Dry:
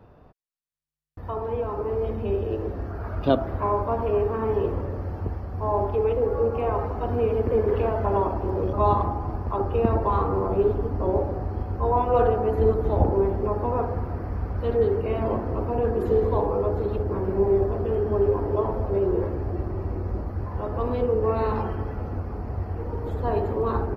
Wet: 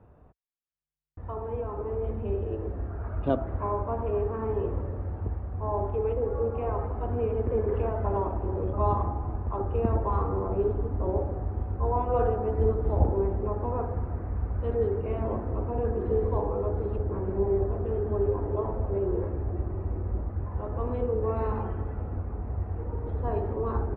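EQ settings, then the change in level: LPF 3100 Hz 12 dB/oct; air absorption 270 m; bell 61 Hz +5.5 dB 1.1 oct; -5.0 dB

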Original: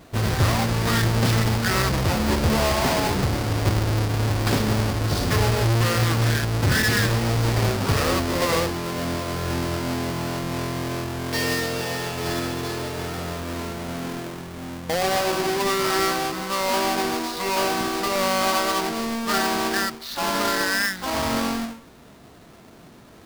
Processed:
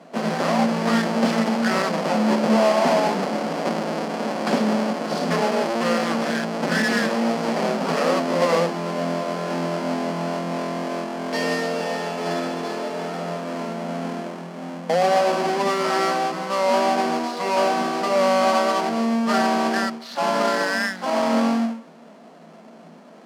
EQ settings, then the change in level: rippled Chebyshev high-pass 160 Hz, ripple 9 dB; air absorption 52 m; notch 3700 Hz, Q 14; +7.5 dB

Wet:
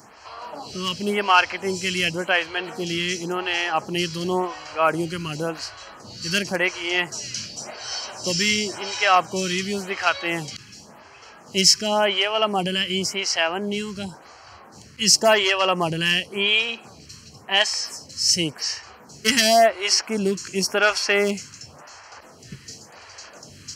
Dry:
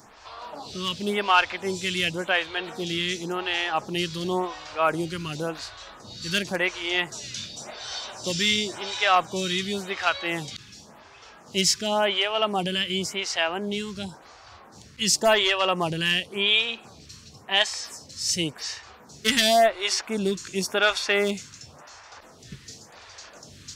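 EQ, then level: HPF 70 Hz; dynamic EQ 5400 Hz, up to +6 dB, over -45 dBFS, Q 3.8; Butterworth band-stop 3600 Hz, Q 5.5; +3.0 dB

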